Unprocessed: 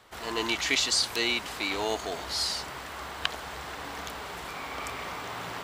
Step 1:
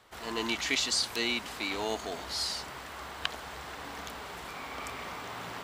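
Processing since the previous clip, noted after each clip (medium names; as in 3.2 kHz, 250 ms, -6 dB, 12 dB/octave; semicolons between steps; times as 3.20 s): dynamic bell 230 Hz, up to +6 dB, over -54 dBFS, Q 4; trim -3.5 dB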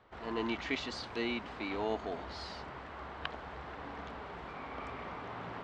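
tape spacing loss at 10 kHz 35 dB; trim +1 dB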